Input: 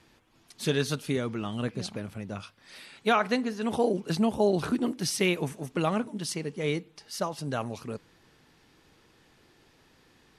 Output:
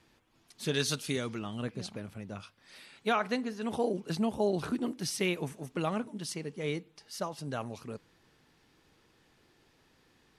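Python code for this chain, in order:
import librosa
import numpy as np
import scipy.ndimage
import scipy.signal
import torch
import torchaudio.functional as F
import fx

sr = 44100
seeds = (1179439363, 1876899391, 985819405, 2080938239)

y = fx.peak_eq(x, sr, hz=6500.0, db=9.5, octaves=2.8, at=(0.74, 1.39))
y = F.gain(torch.from_numpy(y), -5.0).numpy()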